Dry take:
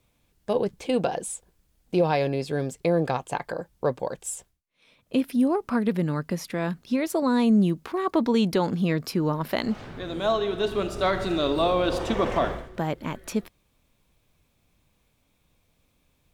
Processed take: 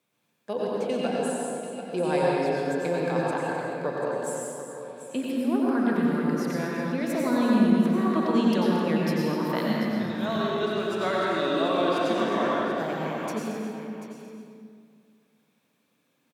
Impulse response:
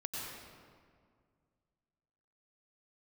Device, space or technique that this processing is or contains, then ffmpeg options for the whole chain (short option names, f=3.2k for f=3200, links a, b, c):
stadium PA: -filter_complex "[0:a]asplit=3[a][b][c];[a]afade=t=out:st=9.67:d=0.02[d];[b]asubboost=boost=6:cutoff=150,afade=t=in:st=9.67:d=0.02,afade=t=out:st=10.39:d=0.02[e];[c]afade=t=in:st=10.39:d=0.02[f];[d][e][f]amix=inputs=3:normalize=0,highpass=f=170:w=0.5412,highpass=f=170:w=1.3066,equalizer=f=1.6k:t=o:w=0.47:g=5,aecho=1:1:224.5|256.6:0.251|0.251,aecho=1:1:738:0.266[g];[1:a]atrim=start_sample=2205[h];[g][h]afir=irnorm=-1:irlink=0,volume=-3dB"